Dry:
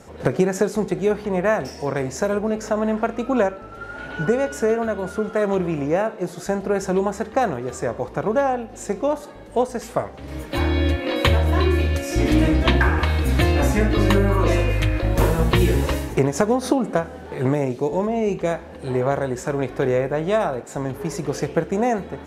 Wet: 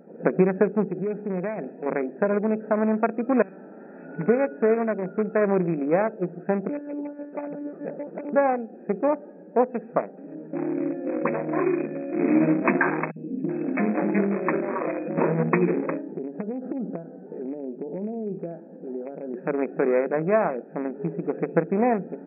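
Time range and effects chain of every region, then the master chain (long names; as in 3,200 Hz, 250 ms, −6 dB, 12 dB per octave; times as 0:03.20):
0:00.89–0:01.86: downward compressor 4 to 1, threshold −21 dBFS + hard clipping −20.5 dBFS
0:03.42–0:04.05: drawn EQ curve 160 Hz 0 dB, 6,200 Hz −30 dB, 9,200 Hz +1 dB + every bin compressed towards the loudest bin 10 to 1
0:06.69–0:08.33: downward compressor 20 to 1, threshold −22 dBFS + double-tracking delay 20 ms −4 dB + one-pitch LPC vocoder at 8 kHz 290 Hz
0:10.35–0:11.34: head-to-tape spacing loss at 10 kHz 30 dB + all-pass dispersion highs, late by 56 ms, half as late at 2,700 Hz
0:13.11–0:15.09: high-pass filter 150 Hz 24 dB per octave + three-band delay without the direct sound highs, lows, mids 50/380 ms, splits 420/4,100 Hz
0:16.01–0:19.34: downward compressor 5 to 1, threshold −23 dBFS + head-to-tape spacing loss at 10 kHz 45 dB + double-tracking delay 15 ms −13.5 dB
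whole clip: adaptive Wiener filter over 41 samples; brick-wall band-pass 160–2,600 Hz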